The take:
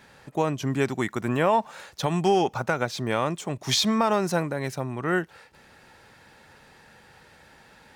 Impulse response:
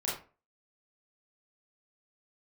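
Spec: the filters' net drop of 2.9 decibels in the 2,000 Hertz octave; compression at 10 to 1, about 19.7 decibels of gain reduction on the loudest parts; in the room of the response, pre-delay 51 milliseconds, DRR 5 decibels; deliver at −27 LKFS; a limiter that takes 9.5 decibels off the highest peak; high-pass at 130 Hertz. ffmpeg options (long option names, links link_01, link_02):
-filter_complex "[0:a]highpass=130,equalizer=frequency=2000:width_type=o:gain=-4,acompressor=threshold=-38dB:ratio=10,alimiter=level_in=10dB:limit=-24dB:level=0:latency=1,volume=-10dB,asplit=2[link_01][link_02];[1:a]atrim=start_sample=2205,adelay=51[link_03];[link_02][link_03]afir=irnorm=-1:irlink=0,volume=-10dB[link_04];[link_01][link_04]amix=inputs=2:normalize=0,volume=18dB"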